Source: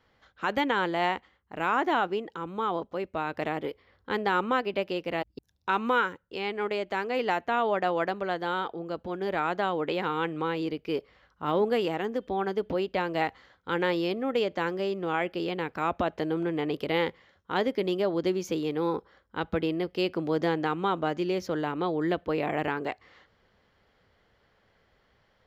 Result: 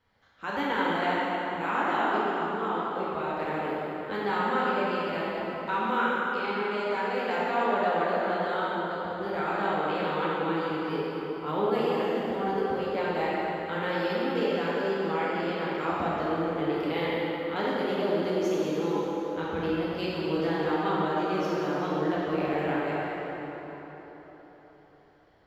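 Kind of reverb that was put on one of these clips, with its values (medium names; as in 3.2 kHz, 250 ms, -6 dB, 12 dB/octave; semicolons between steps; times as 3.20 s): plate-style reverb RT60 4.3 s, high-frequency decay 0.65×, DRR -8 dB; trim -8 dB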